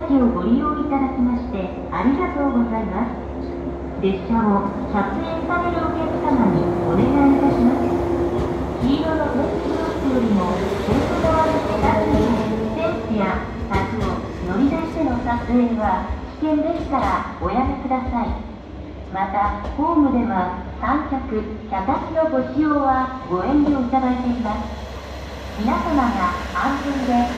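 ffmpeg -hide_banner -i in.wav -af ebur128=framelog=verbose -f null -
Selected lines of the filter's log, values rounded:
Integrated loudness:
  I:         -20.5 LUFS
  Threshold: -30.7 LUFS
Loudness range:
  LRA:         3.7 LU
  Threshold: -40.7 LUFS
  LRA low:   -22.3 LUFS
  LRA high:  -18.5 LUFS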